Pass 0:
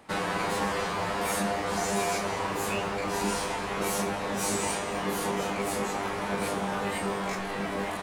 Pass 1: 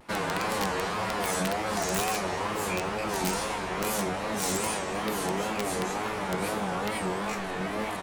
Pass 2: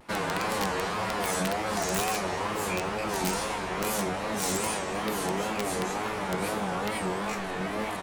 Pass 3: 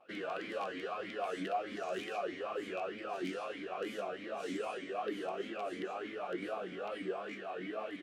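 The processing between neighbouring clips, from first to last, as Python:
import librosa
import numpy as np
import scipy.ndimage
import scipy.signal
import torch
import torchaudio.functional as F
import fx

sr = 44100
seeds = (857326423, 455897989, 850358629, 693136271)

y1 = fx.wow_flutter(x, sr, seeds[0], rate_hz=2.1, depth_cents=140.0)
y1 = (np.mod(10.0 ** (19.0 / 20.0) * y1 + 1.0, 2.0) - 1.0) / 10.0 ** (19.0 / 20.0)
y2 = y1
y3 = fx.vowel_sweep(y2, sr, vowels='a-i', hz=3.2)
y3 = y3 * librosa.db_to_amplitude(1.5)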